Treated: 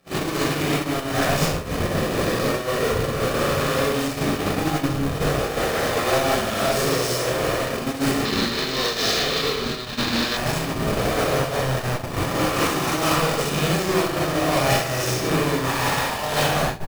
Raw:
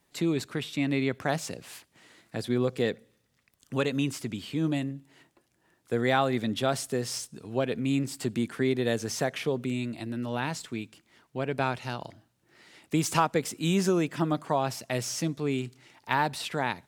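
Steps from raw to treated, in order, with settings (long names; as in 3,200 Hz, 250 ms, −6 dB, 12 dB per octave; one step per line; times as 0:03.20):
peak hold with a rise ahead of every peak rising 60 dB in 2.98 s
brickwall limiter −15 dBFS, peak gain reduction 9.5 dB
comparator with hysteresis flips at −34 dBFS
rectangular room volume 3,500 cubic metres, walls furnished, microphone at 6 metres
noise that follows the level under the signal 31 dB
low-shelf EQ 230 Hz −6.5 dB
double-tracking delay 42 ms −12.5 dB
ambience of single reflections 25 ms −18 dB, 61 ms −9.5 dB
noise gate −22 dBFS, range −35 dB
0:08.25–0:10.37: graphic EQ with 15 bands 100 Hz −6 dB, 630 Hz −7 dB, 4,000 Hz +12 dB, 10,000 Hz −5 dB
amplitude modulation by smooth noise, depth 65%
level +3.5 dB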